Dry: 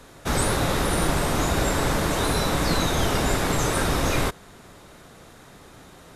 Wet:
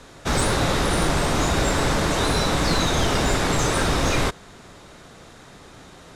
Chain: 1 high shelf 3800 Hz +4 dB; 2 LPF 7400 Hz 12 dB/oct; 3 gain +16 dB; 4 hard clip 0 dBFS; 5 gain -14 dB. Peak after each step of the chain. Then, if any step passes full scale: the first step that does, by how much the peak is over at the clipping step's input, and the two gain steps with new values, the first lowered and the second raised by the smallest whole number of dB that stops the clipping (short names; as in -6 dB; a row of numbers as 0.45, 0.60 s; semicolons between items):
-7.5, -9.0, +7.0, 0.0, -14.0 dBFS; step 3, 7.0 dB; step 3 +9 dB, step 5 -7 dB